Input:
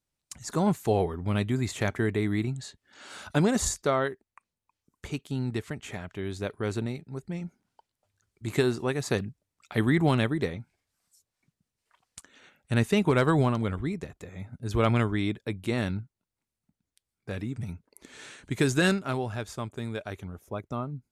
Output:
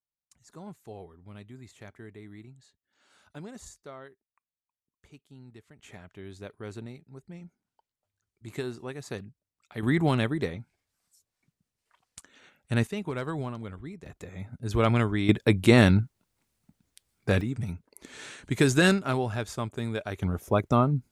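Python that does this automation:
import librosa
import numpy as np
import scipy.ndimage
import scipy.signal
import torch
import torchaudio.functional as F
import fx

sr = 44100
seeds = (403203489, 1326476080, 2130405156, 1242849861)

y = fx.gain(x, sr, db=fx.steps((0.0, -19.0), (5.79, -9.5), (9.83, -1.0), (12.87, -10.0), (14.06, 0.5), (15.29, 11.0), (17.41, 2.5), (20.22, 11.0)))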